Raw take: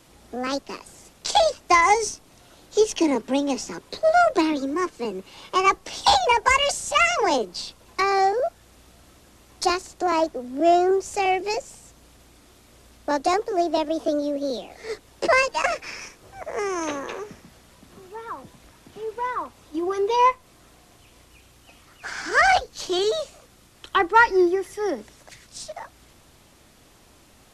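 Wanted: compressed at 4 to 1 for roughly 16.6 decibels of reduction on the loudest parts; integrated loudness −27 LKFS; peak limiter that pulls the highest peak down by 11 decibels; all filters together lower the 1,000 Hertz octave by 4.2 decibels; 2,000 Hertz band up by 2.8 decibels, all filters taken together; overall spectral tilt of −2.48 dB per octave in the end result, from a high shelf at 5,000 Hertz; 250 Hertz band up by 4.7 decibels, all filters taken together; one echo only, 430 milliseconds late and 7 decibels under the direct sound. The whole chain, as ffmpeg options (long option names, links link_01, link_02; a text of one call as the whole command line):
ffmpeg -i in.wav -af "equalizer=frequency=250:width_type=o:gain=7.5,equalizer=frequency=1000:width_type=o:gain=-7.5,equalizer=frequency=2000:width_type=o:gain=4,highshelf=frequency=5000:gain=8,acompressor=threshold=-33dB:ratio=4,alimiter=level_in=2dB:limit=-24dB:level=0:latency=1,volume=-2dB,aecho=1:1:430:0.447,volume=8.5dB" out.wav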